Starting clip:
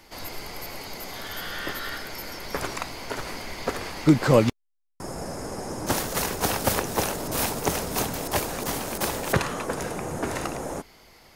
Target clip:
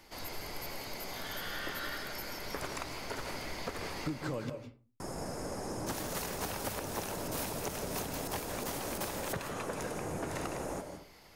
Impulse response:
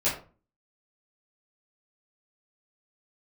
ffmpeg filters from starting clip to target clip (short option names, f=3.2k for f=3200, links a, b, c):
-filter_complex "[0:a]acompressor=threshold=-28dB:ratio=10,asoftclip=type=tanh:threshold=-17dB,asplit=2[a][b];[1:a]atrim=start_sample=2205,afade=t=out:st=0.38:d=0.01,atrim=end_sample=17199,adelay=145[c];[b][c]afir=irnorm=-1:irlink=0,volume=-17.5dB[d];[a][d]amix=inputs=2:normalize=0,volume=-5.5dB"